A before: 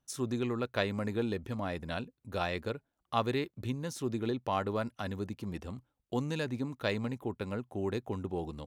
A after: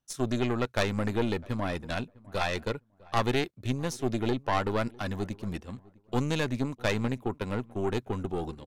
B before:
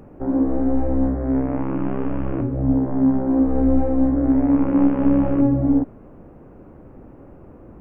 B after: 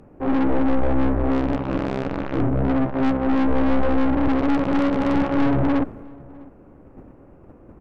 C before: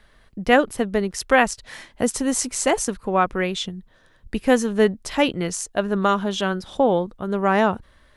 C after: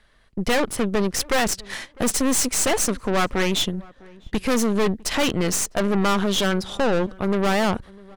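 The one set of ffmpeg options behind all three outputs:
-filter_complex "[0:a]agate=range=-9dB:threshold=-40dB:ratio=16:detection=peak,aemphasis=mode=reproduction:type=75fm,crystalizer=i=4.5:c=0,aeval=exprs='(tanh(20*val(0)+0.75)-tanh(0.75))/20':c=same,asplit=2[a][b];[b]adelay=653,lowpass=f=1.3k:p=1,volume=-23dB,asplit=2[c][d];[d]adelay=653,lowpass=f=1.3k:p=1,volume=0.19[e];[c][e]amix=inputs=2:normalize=0[f];[a][f]amix=inputs=2:normalize=0,volume=8dB"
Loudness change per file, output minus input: +4.5, -2.0, -0.5 LU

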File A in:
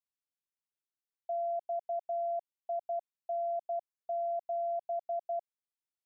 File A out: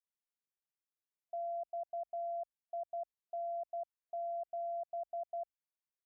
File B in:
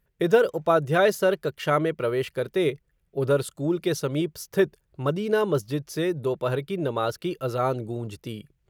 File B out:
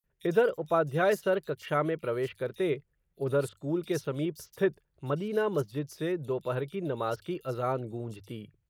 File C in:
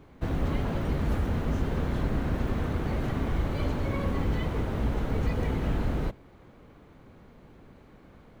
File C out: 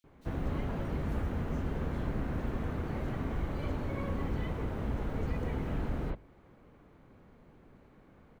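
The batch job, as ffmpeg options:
-filter_complex "[0:a]bass=f=250:g=0,treble=f=4k:g=-3,bandreject=f=50:t=h:w=6,bandreject=f=100:t=h:w=6,acrossover=split=3900[a][b];[a]adelay=40[c];[c][b]amix=inputs=2:normalize=0,volume=-5.5dB"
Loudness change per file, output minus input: -5.5, -5.5, -6.0 LU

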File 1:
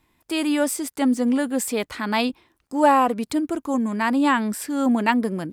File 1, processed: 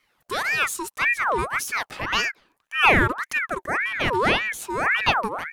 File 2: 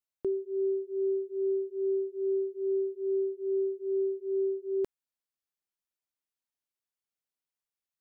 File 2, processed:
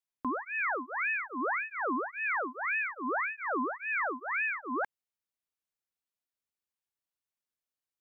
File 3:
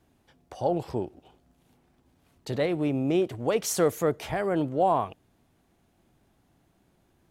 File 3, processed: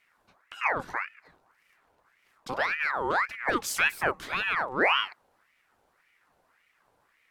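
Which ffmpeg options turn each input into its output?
-af "equalizer=f=860:t=o:w=0.77:g=3.5,aeval=exprs='val(0)*sin(2*PI*1400*n/s+1400*0.55/1.8*sin(2*PI*1.8*n/s))':c=same"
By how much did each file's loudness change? 0.0, -1.0, 0.0 LU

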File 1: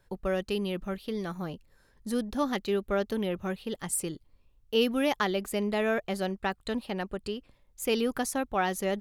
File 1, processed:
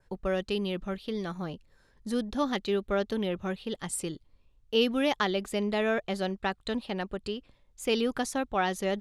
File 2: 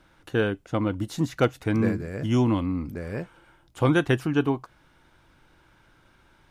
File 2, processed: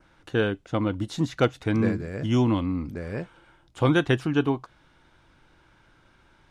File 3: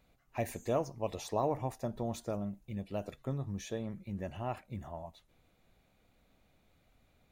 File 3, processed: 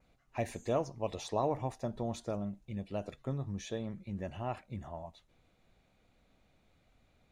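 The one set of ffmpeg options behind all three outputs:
-af "lowpass=8.5k,adynamicequalizer=threshold=0.002:dfrequency=3600:dqfactor=3.1:tfrequency=3600:tqfactor=3.1:attack=5:release=100:ratio=0.375:range=2:mode=boostabove:tftype=bell"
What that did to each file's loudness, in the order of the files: 0.0, 0.0, 0.0 LU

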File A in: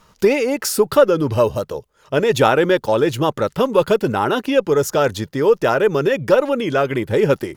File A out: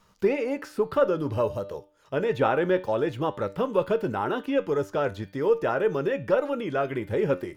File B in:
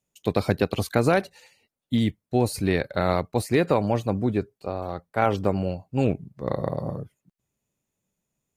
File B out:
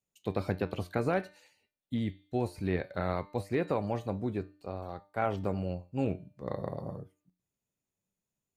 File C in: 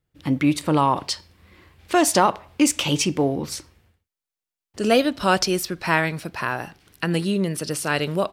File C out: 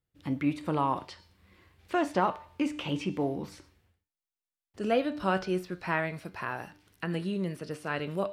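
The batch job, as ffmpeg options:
-filter_complex "[0:a]bandreject=f=299.3:t=h:w=4,bandreject=f=598.6:t=h:w=4,bandreject=f=897.9:t=h:w=4,bandreject=f=1.1972k:t=h:w=4,bandreject=f=1.4965k:t=h:w=4,bandreject=f=1.7958k:t=h:w=4,bandreject=f=2.0951k:t=h:w=4,bandreject=f=2.3944k:t=h:w=4,bandreject=f=2.6937k:t=h:w=4,bandreject=f=2.993k:t=h:w=4,bandreject=f=3.2923k:t=h:w=4,bandreject=f=3.5916k:t=h:w=4,bandreject=f=3.8909k:t=h:w=4,bandreject=f=4.1902k:t=h:w=4,bandreject=f=4.4895k:t=h:w=4,acrossover=split=2900[a][b];[b]acompressor=threshold=-45dB:ratio=4:attack=1:release=60[c];[a][c]amix=inputs=2:normalize=0,flanger=delay=10:depth=1.3:regen=76:speed=0.6:shape=triangular,volume=-4.5dB"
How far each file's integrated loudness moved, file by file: -9.0, -9.0, -9.5 LU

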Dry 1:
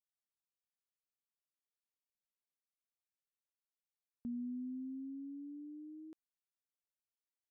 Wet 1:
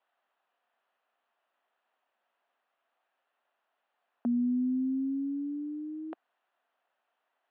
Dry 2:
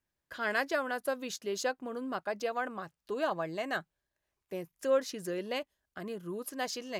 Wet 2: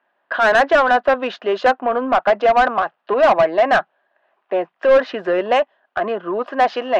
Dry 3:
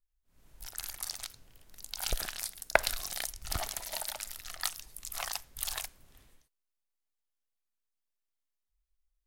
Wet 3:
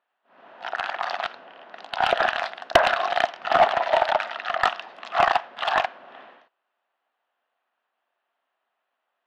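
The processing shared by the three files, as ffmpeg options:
-filter_complex "[0:a]highpass=f=250:w=0.5412,highpass=f=250:w=1.3066,equalizer=f=310:t=q:w=4:g=-7,equalizer=f=440:t=q:w=4:g=-5,equalizer=f=700:t=q:w=4:g=7,equalizer=f=2.2k:t=q:w=4:g=-9,lowpass=f=2.7k:w=0.5412,lowpass=f=2.7k:w=1.3066,aeval=exprs='0.562*sin(PI/2*3.16*val(0)/0.562)':c=same,asplit=2[a][b];[b]highpass=f=720:p=1,volume=19dB,asoftclip=type=tanh:threshold=-5dB[c];[a][c]amix=inputs=2:normalize=0,lowpass=f=2.1k:p=1,volume=-6dB"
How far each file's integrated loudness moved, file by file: +13.0, +18.0, +12.5 LU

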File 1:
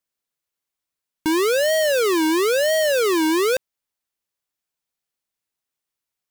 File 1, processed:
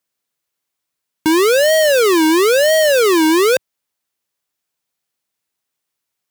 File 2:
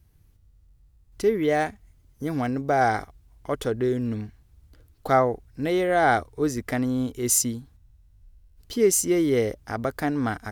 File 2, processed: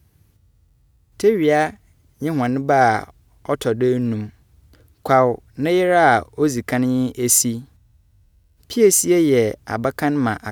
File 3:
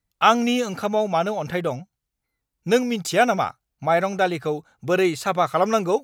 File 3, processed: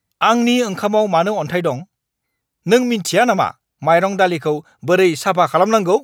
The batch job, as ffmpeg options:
-af "highpass=78,alimiter=level_in=7.5dB:limit=-1dB:release=50:level=0:latency=1,volume=-1dB"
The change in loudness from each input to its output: +6.5, +6.5, +6.0 LU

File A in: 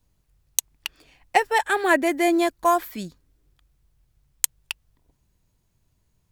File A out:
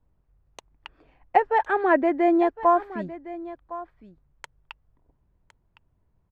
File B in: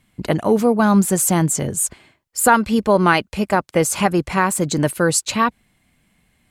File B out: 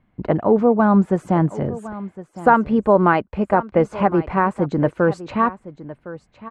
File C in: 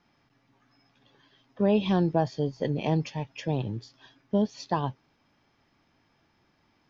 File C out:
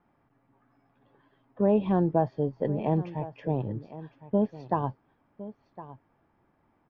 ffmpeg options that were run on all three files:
-af "lowpass=1.2k,equalizer=f=140:t=o:w=2.6:g=-3,aecho=1:1:1060:0.158,volume=2dB"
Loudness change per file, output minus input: -0.5, -1.0, 0.0 LU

